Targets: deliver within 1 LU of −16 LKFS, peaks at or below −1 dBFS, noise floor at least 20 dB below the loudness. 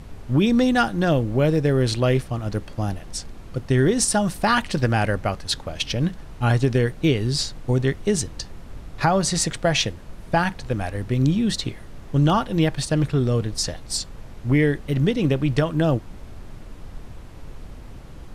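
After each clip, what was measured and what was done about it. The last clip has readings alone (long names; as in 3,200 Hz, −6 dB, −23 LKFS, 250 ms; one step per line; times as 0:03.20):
background noise floor −40 dBFS; target noise floor −42 dBFS; integrated loudness −22.0 LKFS; sample peak −7.5 dBFS; target loudness −16.0 LKFS
→ noise reduction from a noise print 6 dB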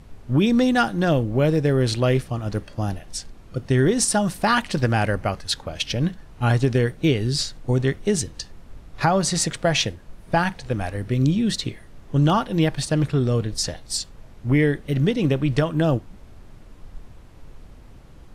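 background noise floor −46 dBFS; integrated loudness −22.0 LKFS; sample peak −7.5 dBFS; target loudness −16.0 LKFS
→ level +6 dB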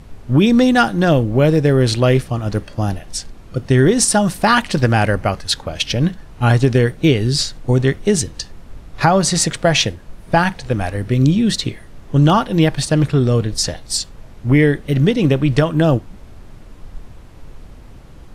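integrated loudness −16.0 LKFS; sample peak −1.5 dBFS; background noise floor −39 dBFS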